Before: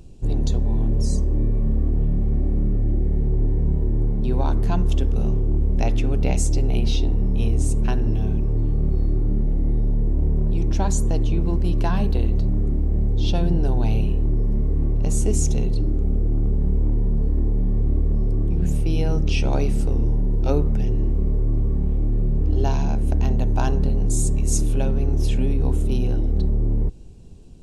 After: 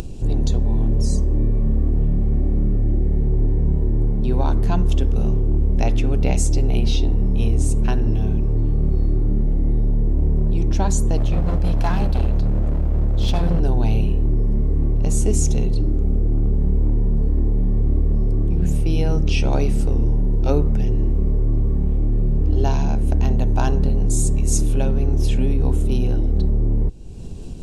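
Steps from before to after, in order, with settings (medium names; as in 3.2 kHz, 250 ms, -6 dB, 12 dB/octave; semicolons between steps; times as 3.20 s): 11.17–13.60 s: comb filter that takes the minimum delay 1.2 ms; upward compressor, threshold -21 dBFS; trim +2 dB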